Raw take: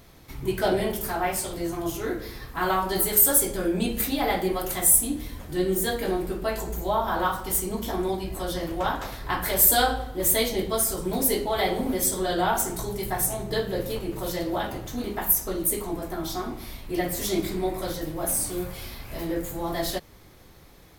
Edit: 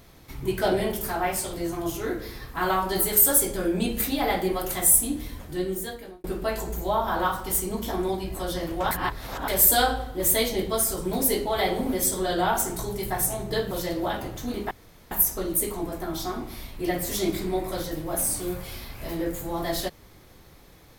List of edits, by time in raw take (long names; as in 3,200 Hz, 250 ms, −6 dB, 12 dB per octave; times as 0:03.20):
0:05.33–0:06.24: fade out
0:08.91–0:09.48: reverse
0:13.71–0:14.21: remove
0:15.21: splice in room tone 0.40 s